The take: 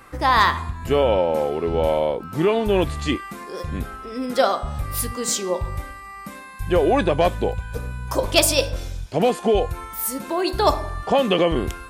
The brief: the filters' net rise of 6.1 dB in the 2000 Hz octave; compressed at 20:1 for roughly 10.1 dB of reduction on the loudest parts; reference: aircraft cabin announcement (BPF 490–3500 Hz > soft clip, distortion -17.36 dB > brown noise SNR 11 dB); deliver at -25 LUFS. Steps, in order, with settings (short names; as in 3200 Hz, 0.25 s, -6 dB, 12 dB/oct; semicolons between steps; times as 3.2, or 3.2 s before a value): bell 2000 Hz +8 dB; compressor 20:1, threshold -18 dBFS; BPF 490–3500 Hz; soft clip -17.5 dBFS; brown noise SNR 11 dB; gain +4.5 dB